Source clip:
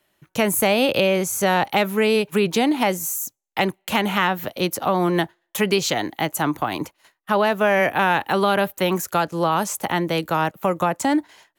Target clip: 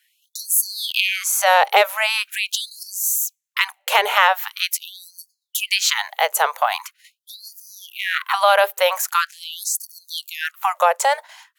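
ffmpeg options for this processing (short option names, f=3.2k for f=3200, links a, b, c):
-filter_complex "[0:a]asettb=1/sr,asplit=3[a][b][c];[a]atrim=end=7.794[d];[b]atrim=start=7.79:end=8.34,asetpts=PTS-STARTPTS,afade=t=in:d=0.004:c=qsin,afade=t=out:st=0.546:d=0.004:c=qsin,aeval=exprs='val(0)*sin(2*PI*230*n/s)':c=same[e];[c]atrim=start=8.336[f];[d][e]acrossfade=d=0.004:c1=hsin:c2=qsin[g];[g][f]acrossfade=d=0.004:c1=qsin:c2=hsin,adynamicequalizer=threshold=0.00794:dfrequency=330:dqfactor=7.8:tfrequency=330:tqfactor=7.8:attack=5:release=100:ratio=0.375:range=3:mode=boostabove:tftype=bell,afftfilt=real='re*gte(b*sr/1024,420*pow(4400/420,0.5+0.5*sin(2*PI*0.43*pts/sr)))':imag='im*gte(b*sr/1024,420*pow(4400/420,0.5+0.5*sin(2*PI*0.43*pts/sr)))':win_size=1024:overlap=0.75,volume=6dB"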